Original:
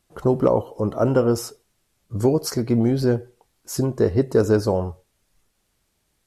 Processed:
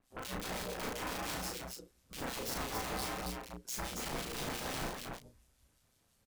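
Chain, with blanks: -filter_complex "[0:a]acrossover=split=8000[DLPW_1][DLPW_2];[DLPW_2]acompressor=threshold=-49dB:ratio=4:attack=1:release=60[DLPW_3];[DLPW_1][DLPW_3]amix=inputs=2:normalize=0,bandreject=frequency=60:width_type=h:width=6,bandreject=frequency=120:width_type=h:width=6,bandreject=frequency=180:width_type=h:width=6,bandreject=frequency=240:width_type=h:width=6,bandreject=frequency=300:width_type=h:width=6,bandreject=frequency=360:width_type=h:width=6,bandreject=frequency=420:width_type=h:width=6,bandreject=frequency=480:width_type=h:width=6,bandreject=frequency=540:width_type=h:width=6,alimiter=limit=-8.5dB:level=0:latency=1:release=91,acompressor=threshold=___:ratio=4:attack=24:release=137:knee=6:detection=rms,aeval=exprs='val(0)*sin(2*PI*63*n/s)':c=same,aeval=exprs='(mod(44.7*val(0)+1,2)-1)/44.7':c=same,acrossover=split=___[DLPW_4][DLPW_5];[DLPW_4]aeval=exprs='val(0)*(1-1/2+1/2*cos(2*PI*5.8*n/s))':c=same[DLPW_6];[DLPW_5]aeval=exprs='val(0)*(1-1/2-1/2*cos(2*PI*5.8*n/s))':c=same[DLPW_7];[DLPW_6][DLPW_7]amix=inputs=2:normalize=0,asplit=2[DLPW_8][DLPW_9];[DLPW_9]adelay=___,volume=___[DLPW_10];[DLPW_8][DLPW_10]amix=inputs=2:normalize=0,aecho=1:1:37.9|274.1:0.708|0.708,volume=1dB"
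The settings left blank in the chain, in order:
-31dB, 2300, 34, -7dB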